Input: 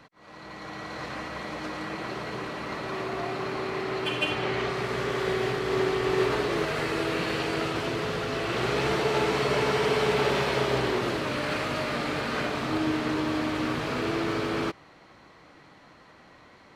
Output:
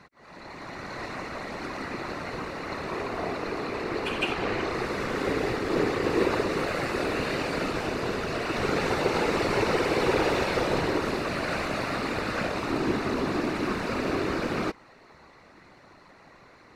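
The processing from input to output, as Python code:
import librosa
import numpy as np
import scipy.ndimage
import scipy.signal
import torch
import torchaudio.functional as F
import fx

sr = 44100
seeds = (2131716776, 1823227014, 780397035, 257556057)

y = fx.notch(x, sr, hz=3200.0, q=5.8)
y = fx.whisperise(y, sr, seeds[0])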